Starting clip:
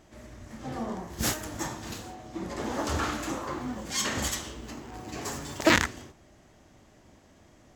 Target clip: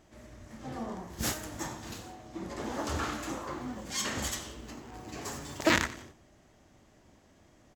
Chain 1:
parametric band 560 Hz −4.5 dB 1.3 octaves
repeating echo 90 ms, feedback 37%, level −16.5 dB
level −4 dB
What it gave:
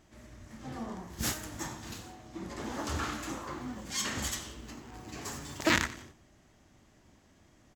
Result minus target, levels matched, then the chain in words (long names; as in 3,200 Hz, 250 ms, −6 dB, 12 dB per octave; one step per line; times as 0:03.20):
500 Hz band −3.0 dB
repeating echo 90 ms, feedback 37%, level −16.5 dB
level −4 dB